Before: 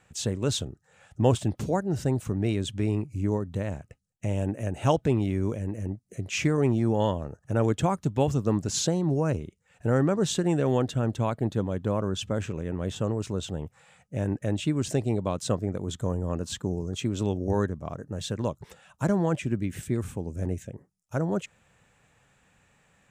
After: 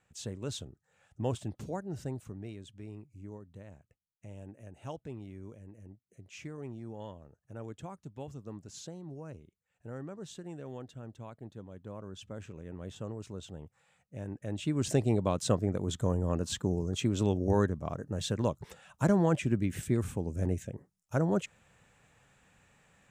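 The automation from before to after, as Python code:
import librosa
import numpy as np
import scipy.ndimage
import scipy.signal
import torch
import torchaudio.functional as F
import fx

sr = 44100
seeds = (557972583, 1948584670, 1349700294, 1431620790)

y = fx.gain(x, sr, db=fx.line((2.03, -11.0), (2.63, -19.0), (11.59, -19.0), (12.75, -12.0), (14.37, -12.0), (14.9, -1.0)))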